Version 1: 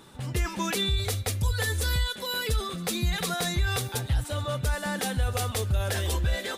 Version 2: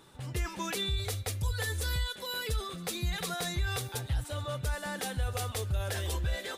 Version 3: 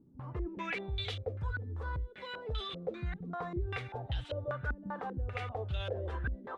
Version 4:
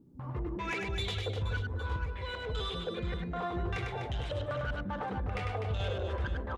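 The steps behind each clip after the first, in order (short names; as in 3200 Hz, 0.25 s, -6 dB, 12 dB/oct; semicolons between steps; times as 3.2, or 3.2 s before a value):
bell 220 Hz -8 dB 0.3 oct; gain -5.5 dB
stepped low-pass 5.1 Hz 250–3200 Hz; gain -5 dB
soft clip -32.5 dBFS, distortion -15 dB; reverse bouncing-ball echo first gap 0.1 s, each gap 1.5×, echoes 5; gain +3 dB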